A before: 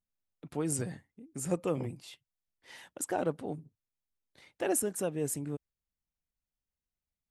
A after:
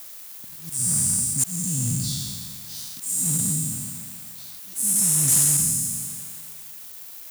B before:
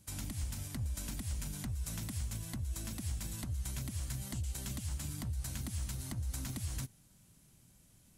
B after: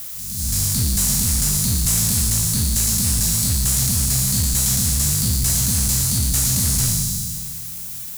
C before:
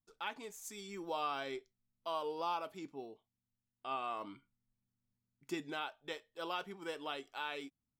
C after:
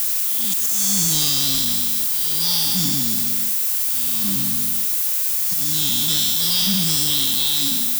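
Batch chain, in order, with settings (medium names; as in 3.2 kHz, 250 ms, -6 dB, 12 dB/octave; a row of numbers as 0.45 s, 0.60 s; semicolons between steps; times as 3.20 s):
spectral sustain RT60 2.05 s; inverse Chebyshev band-stop 360–2400 Hz, stop band 40 dB; gate with hold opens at -60 dBFS; bass shelf 170 Hz -11 dB; level rider gain up to 9 dB; slow attack 486 ms; added noise violet -48 dBFS; waveshaping leveller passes 3; peak normalisation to -12 dBFS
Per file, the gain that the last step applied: -0.5 dB, +5.5 dB, +17.5 dB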